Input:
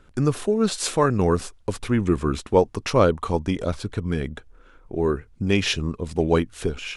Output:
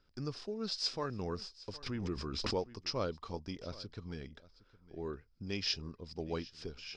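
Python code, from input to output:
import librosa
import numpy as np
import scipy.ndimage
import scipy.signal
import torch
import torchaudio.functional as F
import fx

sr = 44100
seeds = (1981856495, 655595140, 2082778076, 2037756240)

y = fx.ladder_lowpass(x, sr, hz=5200.0, resonance_pct=85)
y = y + 10.0 ** (-19.5 / 20.0) * np.pad(y, (int(762 * sr / 1000.0), 0))[:len(y)]
y = fx.pre_swell(y, sr, db_per_s=37.0, at=(1.86, 2.75))
y = y * librosa.db_to_amplitude(-6.0)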